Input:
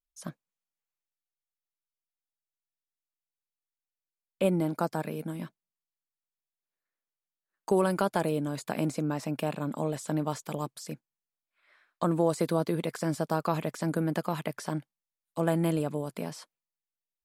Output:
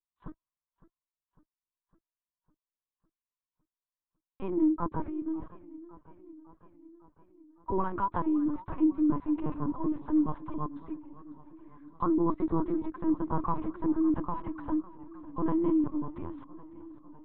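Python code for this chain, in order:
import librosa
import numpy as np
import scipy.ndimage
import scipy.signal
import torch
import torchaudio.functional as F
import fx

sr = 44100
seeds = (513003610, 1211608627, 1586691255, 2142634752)

y = fx.double_bandpass(x, sr, hz=560.0, octaves=1.7)
y = fx.lpc_vocoder(y, sr, seeds[0], excitation='pitch_kept', order=8)
y = fx.echo_warbled(y, sr, ms=555, feedback_pct=66, rate_hz=2.8, cents=142, wet_db=-18.5)
y = F.gain(torch.from_numpy(y), 8.0).numpy()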